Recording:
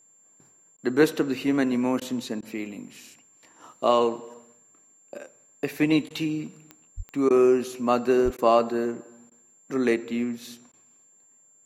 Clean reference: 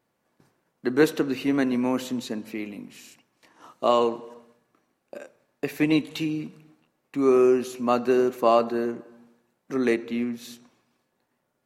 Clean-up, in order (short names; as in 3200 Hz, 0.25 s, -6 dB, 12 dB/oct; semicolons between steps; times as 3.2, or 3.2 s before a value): de-click; notch 7300 Hz, Q 30; 6.96–7.08 HPF 140 Hz 24 dB/oct; 8.24–8.36 HPF 140 Hz 24 dB/oct; interpolate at 0.77/2/2.41/6.09/7.29/8.37/9.3/10.72, 13 ms